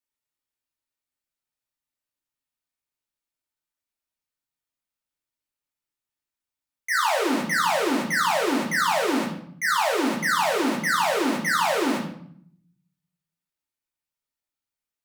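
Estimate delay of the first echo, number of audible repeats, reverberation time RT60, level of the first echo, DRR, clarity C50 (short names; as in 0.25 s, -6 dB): none, none, 0.60 s, none, -4.0 dB, 6.5 dB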